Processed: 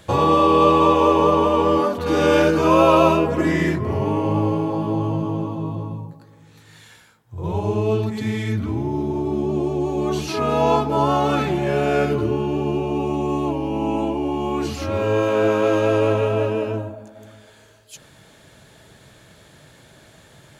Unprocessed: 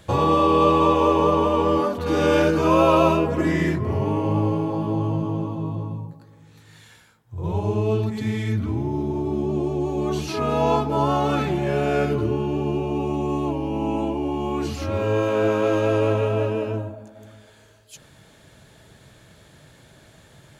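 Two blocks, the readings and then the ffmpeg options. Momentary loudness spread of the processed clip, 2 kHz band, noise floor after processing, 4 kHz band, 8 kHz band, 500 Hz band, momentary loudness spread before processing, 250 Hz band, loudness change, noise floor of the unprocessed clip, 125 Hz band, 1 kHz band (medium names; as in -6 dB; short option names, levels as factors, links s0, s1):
10 LU, +3.0 dB, -50 dBFS, +3.0 dB, +3.0 dB, +2.5 dB, 9 LU, +2.0 dB, +2.5 dB, -52 dBFS, 0.0 dB, +3.0 dB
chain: -af "lowshelf=f=160:g=-4.5,volume=1.41"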